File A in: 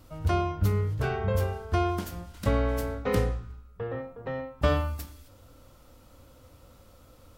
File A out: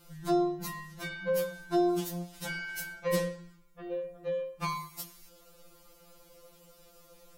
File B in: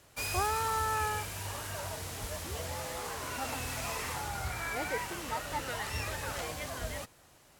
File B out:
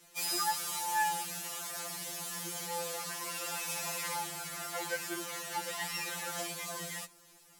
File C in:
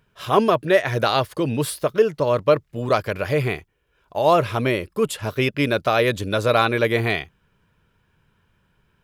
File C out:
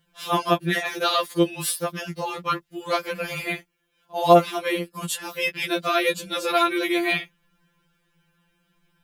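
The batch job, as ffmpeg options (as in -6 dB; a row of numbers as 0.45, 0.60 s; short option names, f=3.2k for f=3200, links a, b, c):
-af "highshelf=f=3.2k:g=8,afftfilt=real='re*2.83*eq(mod(b,8),0)':imag='im*2.83*eq(mod(b,8),0)':win_size=2048:overlap=0.75,volume=-1dB"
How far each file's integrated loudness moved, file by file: -4.0, 0.0, -3.0 LU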